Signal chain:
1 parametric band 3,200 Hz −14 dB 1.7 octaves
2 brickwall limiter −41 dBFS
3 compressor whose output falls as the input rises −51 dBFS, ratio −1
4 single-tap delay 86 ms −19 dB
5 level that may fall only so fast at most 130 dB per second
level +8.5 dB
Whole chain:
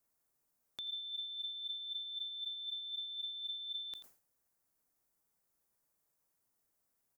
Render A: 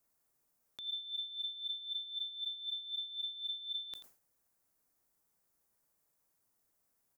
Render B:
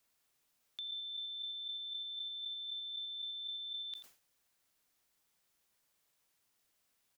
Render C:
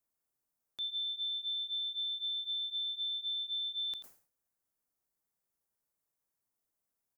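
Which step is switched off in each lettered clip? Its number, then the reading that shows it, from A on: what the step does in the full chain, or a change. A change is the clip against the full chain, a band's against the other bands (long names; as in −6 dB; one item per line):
2, average gain reduction 2.5 dB
1, change in crest factor −5.0 dB
3, change in crest factor −7.0 dB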